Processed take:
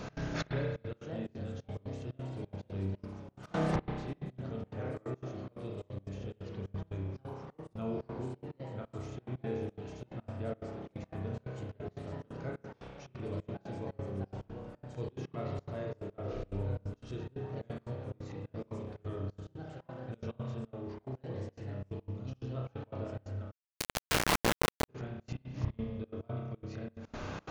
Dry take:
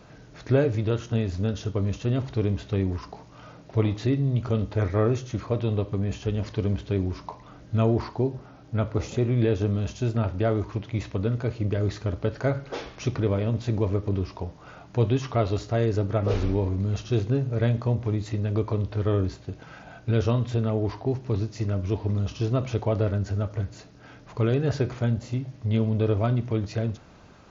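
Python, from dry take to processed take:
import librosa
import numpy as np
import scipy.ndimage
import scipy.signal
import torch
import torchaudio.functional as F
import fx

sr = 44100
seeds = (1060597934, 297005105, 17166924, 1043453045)

y = fx.echo_pitch(x, sr, ms=631, semitones=3, count=3, db_per_echo=-6.0)
y = fx.gate_flip(y, sr, shuts_db=-28.0, range_db=-26)
y = fx.rev_spring(y, sr, rt60_s=1.4, pass_ms=(31,), chirp_ms=80, drr_db=-2.0)
y = fx.step_gate(y, sr, bpm=178, pattern='x.xxx.xxx.', floor_db=-24.0, edge_ms=4.5)
y = fx.quant_companded(y, sr, bits=2, at=(23.5, 24.88), fade=0.02)
y = y * 10.0 ** (7.5 / 20.0)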